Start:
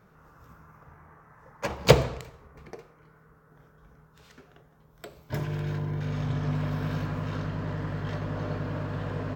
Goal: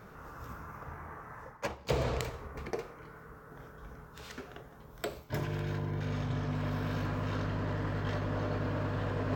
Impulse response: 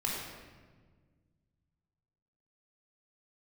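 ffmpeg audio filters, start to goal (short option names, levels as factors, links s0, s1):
-af "areverse,acompressor=threshold=0.0126:ratio=6,areverse,equalizer=f=160:t=o:w=0.37:g=-6.5,volume=2.66"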